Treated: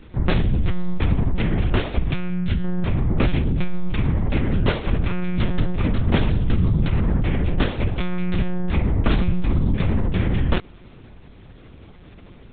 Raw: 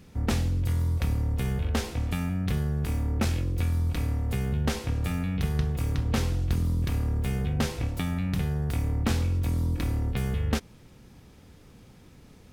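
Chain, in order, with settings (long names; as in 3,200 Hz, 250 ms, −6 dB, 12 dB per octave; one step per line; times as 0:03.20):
0:01.97–0:02.63: parametric band 630 Hz −1 dB → −12 dB 2.5 octaves
one-pitch LPC vocoder at 8 kHz 180 Hz
level +8 dB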